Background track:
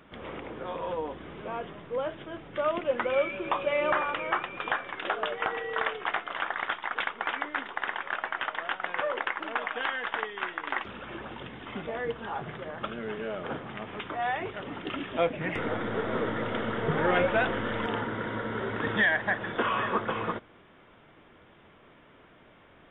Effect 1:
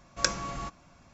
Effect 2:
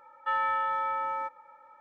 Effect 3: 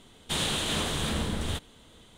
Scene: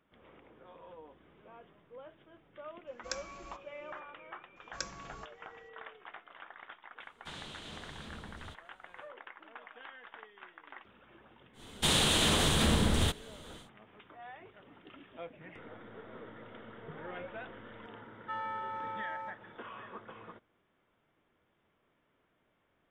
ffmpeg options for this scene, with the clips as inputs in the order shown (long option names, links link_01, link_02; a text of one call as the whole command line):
ffmpeg -i bed.wav -i cue0.wav -i cue1.wav -i cue2.wav -filter_complex "[1:a]asplit=2[link_01][link_02];[3:a]asplit=2[link_03][link_04];[0:a]volume=-19dB[link_05];[link_01]equalizer=frequency=140:width=1.6:gain=-10[link_06];[link_03]acrossover=split=6700[link_07][link_08];[link_08]acompressor=threshold=-54dB:ratio=4:attack=1:release=60[link_09];[link_07][link_09]amix=inputs=2:normalize=0[link_10];[link_04]alimiter=level_in=19.5dB:limit=-1dB:release=50:level=0:latency=1[link_11];[2:a]asplit=2[link_12][link_13];[link_13]adelay=42,volume=-9dB[link_14];[link_12][link_14]amix=inputs=2:normalize=0[link_15];[link_06]atrim=end=1.13,asetpts=PTS-STARTPTS,volume=-13dB,afade=type=in:duration=0.004:curve=hsin,afade=type=out:start_time=1.126:duration=0.004:curve=hsin,adelay=2870[link_16];[link_02]atrim=end=1.13,asetpts=PTS-STARTPTS,volume=-13dB,afade=type=in:duration=0.004:curve=hsin,afade=type=out:start_time=1.126:duration=0.004:curve=hsin,adelay=4560[link_17];[link_10]atrim=end=2.17,asetpts=PTS-STARTPTS,volume=-17.5dB,afade=type=in:duration=0.1,afade=type=out:start_time=2.07:duration=0.1,adelay=6960[link_18];[link_11]atrim=end=2.17,asetpts=PTS-STARTPTS,volume=-16dB,afade=type=in:duration=0.1,afade=type=out:start_time=2.07:duration=0.1,adelay=11530[link_19];[link_15]atrim=end=1.8,asetpts=PTS-STARTPTS,volume=-9dB,afade=type=in:duration=0.004:curve=hsin,afade=type=out:start_time=1.796:duration=0.004:curve=hsin,adelay=18020[link_20];[link_05][link_16][link_17][link_18][link_19][link_20]amix=inputs=6:normalize=0" out.wav